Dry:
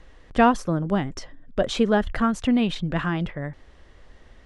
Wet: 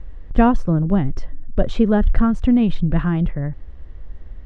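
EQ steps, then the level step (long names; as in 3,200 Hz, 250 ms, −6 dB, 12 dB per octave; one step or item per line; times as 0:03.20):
RIAA equalisation playback
−1.5 dB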